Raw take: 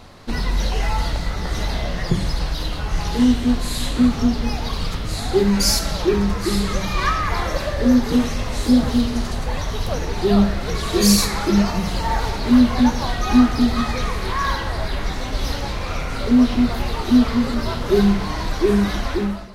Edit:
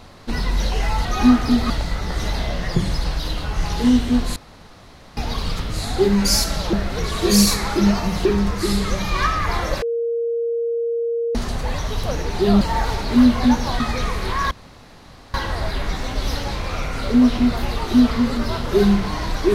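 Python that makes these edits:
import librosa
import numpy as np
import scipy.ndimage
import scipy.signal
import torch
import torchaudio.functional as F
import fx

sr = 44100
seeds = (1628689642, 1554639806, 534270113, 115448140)

y = fx.edit(x, sr, fx.room_tone_fill(start_s=3.71, length_s=0.81),
    fx.bleep(start_s=7.65, length_s=1.53, hz=466.0, db=-19.0),
    fx.move(start_s=10.44, length_s=1.52, to_s=6.08),
    fx.move(start_s=13.15, length_s=0.65, to_s=1.05),
    fx.insert_room_tone(at_s=14.51, length_s=0.83), tone=tone)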